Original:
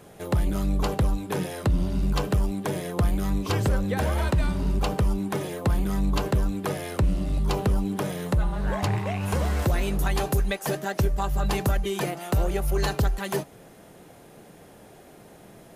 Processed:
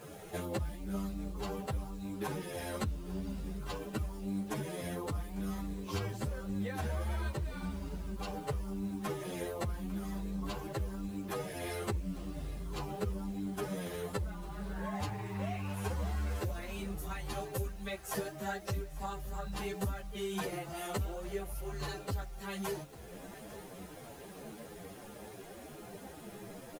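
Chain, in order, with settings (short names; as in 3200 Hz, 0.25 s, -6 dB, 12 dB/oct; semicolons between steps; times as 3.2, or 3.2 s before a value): compressor 8:1, threshold -35 dBFS, peak gain reduction 16 dB; requantised 10-bit, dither none; time stretch by phase-locked vocoder 1.7×; feedback echo 0.849 s, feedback 54%, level -18 dB; ensemble effect; gain +4 dB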